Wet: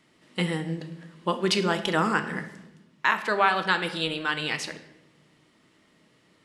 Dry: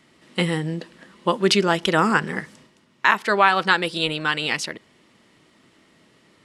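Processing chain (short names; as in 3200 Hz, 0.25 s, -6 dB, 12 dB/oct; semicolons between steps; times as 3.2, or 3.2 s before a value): shoebox room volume 360 m³, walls mixed, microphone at 0.49 m; gain -6 dB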